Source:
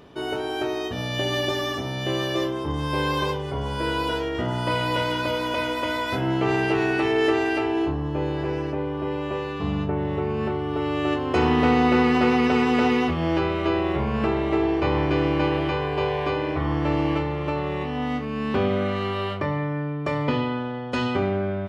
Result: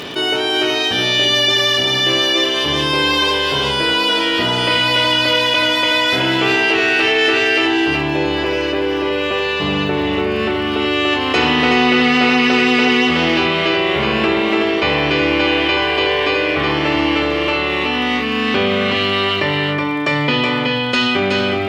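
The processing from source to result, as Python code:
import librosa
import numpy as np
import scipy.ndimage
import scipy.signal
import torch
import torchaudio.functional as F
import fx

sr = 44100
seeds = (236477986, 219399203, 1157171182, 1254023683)

y = fx.weighting(x, sr, curve='D')
y = fx.dmg_crackle(y, sr, seeds[0], per_s=93.0, level_db=-43.0)
y = y + 10.0 ** (-5.5 / 20.0) * np.pad(y, (int(372 * sr / 1000.0), 0))[:len(y)]
y = fx.env_flatten(y, sr, amount_pct=50)
y = y * 10.0 ** (2.5 / 20.0)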